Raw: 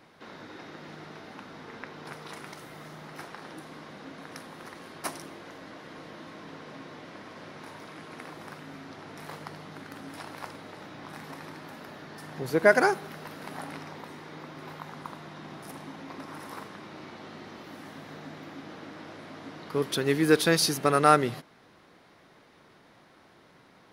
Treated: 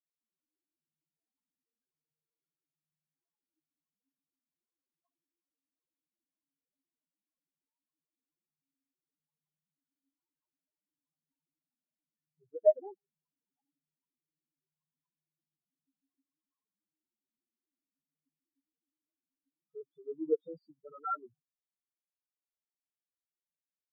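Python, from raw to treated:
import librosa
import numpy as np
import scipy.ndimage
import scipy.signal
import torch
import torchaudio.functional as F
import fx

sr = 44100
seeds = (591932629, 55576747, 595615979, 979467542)

y = fx.spec_topn(x, sr, count=2)
y = fx.lowpass(y, sr, hz=2900.0, slope=6)
y = fx.upward_expand(y, sr, threshold_db=-49.0, expansion=2.5)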